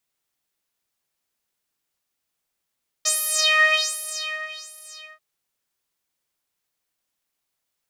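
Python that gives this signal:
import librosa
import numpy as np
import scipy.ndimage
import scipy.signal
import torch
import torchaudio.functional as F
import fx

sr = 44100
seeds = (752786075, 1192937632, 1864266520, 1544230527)

y = fx.sub_patch_wobble(sr, seeds[0], note=75, wave='saw', wave2='saw', interval_st=0, level2_db=-9.0, sub_db=-28, noise_db=-30.0, kind='bandpass', cutoff_hz=3900.0, q=4.5, env_oct=0.5, env_decay_s=0.27, env_sustain_pct=40, attack_ms=16.0, decay_s=1.37, sustain_db=-20.5, release_s=0.32, note_s=1.82, lfo_hz=1.3, wobble_oct=1.3)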